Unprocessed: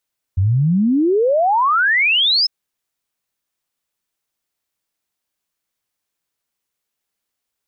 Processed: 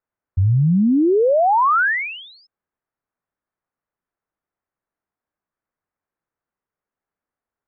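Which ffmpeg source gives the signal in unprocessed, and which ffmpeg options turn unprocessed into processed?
-f lavfi -i "aevalsrc='0.251*clip(min(t,2.1-t)/0.01,0,1)*sin(2*PI*88*2.1/log(5300/88)*(exp(log(5300/88)*t/2.1)-1))':d=2.1:s=44100"
-af "lowpass=f=1.7k:w=0.5412,lowpass=f=1.7k:w=1.3066"

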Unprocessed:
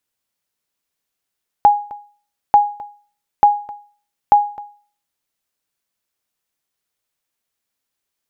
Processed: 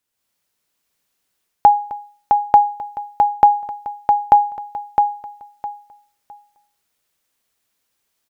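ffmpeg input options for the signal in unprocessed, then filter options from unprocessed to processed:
-f lavfi -i "aevalsrc='0.75*(sin(2*PI*825*mod(t,0.89))*exp(-6.91*mod(t,0.89)/0.42)+0.0944*sin(2*PI*825*max(mod(t,0.89)-0.26,0))*exp(-6.91*max(mod(t,0.89)-0.26,0)/0.42))':d=3.56:s=44100"
-filter_complex "[0:a]dynaudnorm=f=120:g=3:m=6dB,asplit=2[a][b];[b]aecho=0:1:660|1320|1980:0.596|0.131|0.0288[c];[a][c]amix=inputs=2:normalize=0"

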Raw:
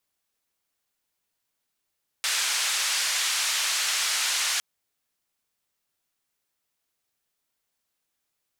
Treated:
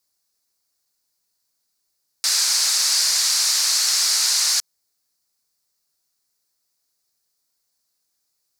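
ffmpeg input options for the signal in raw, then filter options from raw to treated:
-f lavfi -i "anoisesrc=c=white:d=2.36:r=44100:seed=1,highpass=f=1300,lowpass=f=7200,volume=-15.6dB"
-af "highshelf=f=3.8k:t=q:w=3:g=6"

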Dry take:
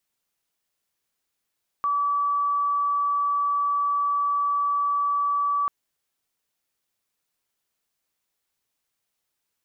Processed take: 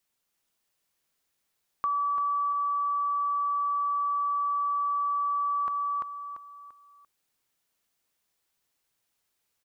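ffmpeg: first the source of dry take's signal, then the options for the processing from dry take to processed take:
-f lavfi -i "aevalsrc='0.0944*sin(2*PI*1150*t)':d=3.84:s=44100"
-filter_complex "[0:a]asplit=2[a][b];[b]aecho=0:1:342|684|1026|1368:0.631|0.208|0.0687|0.0227[c];[a][c]amix=inputs=2:normalize=0,acompressor=threshold=-26dB:ratio=6"

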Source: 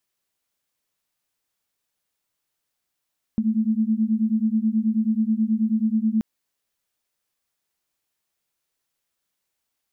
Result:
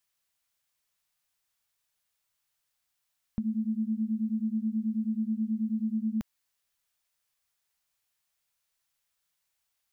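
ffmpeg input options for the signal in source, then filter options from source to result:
-f lavfi -i "aevalsrc='0.0841*(sin(2*PI*215*t)+sin(2*PI*224.3*t))':d=2.83:s=44100"
-af "equalizer=f=310:w=0.8:g=-11.5"

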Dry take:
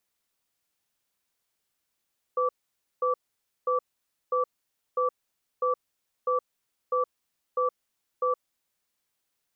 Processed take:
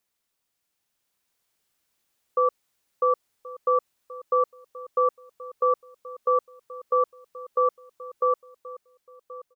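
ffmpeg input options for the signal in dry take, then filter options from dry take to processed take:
-f lavfi -i "aevalsrc='0.0562*(sin(2*PI*503*t)+sin(2*PI*1160*t))*clip(min(mod(t,0.65),0.12-mod(t,0.65))/0.005,0,1)':d=6.09:s=44100"
-filter_complex "[0:a]dynaudnorm=f=220:g=11:m=5dB,asplit=2[a][b];[b]adelay=1078,lowpass=f=1.1k:p=1,volume=-16dB,asplit=2[c][d];[d]adelay=1078,lowpass=f=1.1k:p=1,volume=0.34,asplit=2[e][f];[f]adelay=1078,lowpass=f=1.1k:p=1,volume=0.34[g];[a][c][e][g]amix=inputs=4:normalize=0"

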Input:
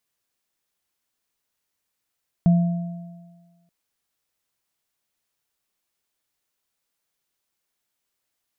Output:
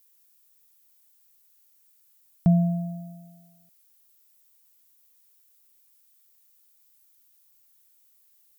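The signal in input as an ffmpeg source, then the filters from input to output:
-f lavfi -i "aevalsrc='0.282*pow(10,-3*t/1.43)*sin(2*PI*173*t)+0.0398*pow(10,-3*t/1.68)*sin(2*PI*675*t)':d=1.23:s=44100"
-af "aemphasis=mode=production:type=75fm"

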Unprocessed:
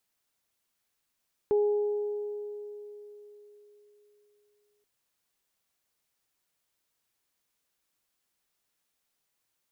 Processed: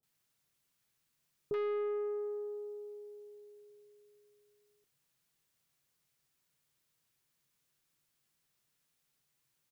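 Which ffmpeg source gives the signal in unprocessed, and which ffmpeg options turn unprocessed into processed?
-f lavfi -i "aevalsrc='0.0944*pow(10,-3*t/3.85)*sin(2*PI*415*t)+0.0133*pow(10,-3*t/2.33)*sin(2*PI*830*t)':d=3.33:s=44100"
-filter_complex "[0:a]equalizer=f=140:t=o:w=0.52:g=13,asoftclip=type=tanh:threshold=-30.5dB,acrossover=split=740[a][b];[b]adelay=30[c];[a][c]amix=inputs=2:normalize=0"

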